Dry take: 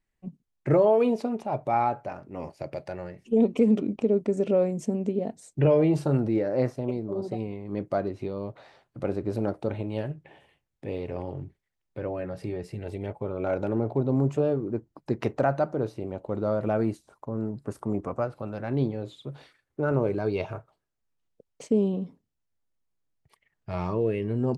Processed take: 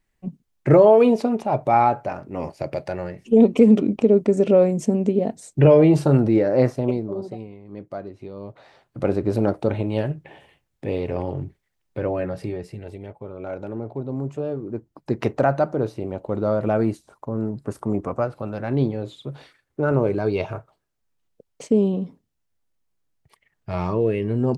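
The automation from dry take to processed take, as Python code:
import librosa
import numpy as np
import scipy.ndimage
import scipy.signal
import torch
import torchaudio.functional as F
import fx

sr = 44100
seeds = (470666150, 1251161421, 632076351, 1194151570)

y = fx.gain(x, sr, db=fx.line((6.91, 7.5), (7.5, -5.5), (8.18, -5.5), (9.06, 7.5), (12.23, 7.5), (13.09, -4.0), (14.33, -4.0), (15.22, 5.0)))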